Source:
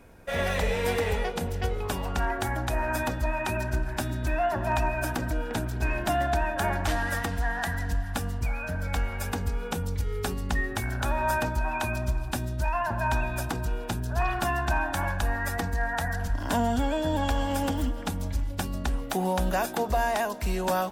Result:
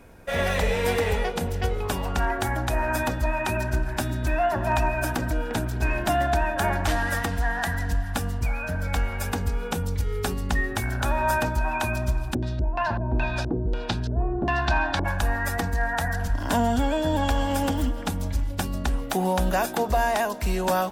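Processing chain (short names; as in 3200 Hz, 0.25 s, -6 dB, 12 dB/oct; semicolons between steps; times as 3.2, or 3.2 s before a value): 12.33–15.04 LFO low-pass square 3.3 Hz -> 0.83 Hz 390–4300 Hz; gain +3 dB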